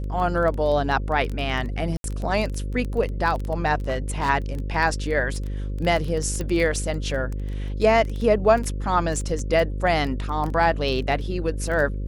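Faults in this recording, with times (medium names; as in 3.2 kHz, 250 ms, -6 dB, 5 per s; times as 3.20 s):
buzz 50 Hz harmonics 11 -28 dBFS
crackle 13 per s -26 dBFS
1.97–2.04 s: dropout 72 ms
3.88–4.30 s: clipped -19 dBFS
6.41 s: pop -16 dBFS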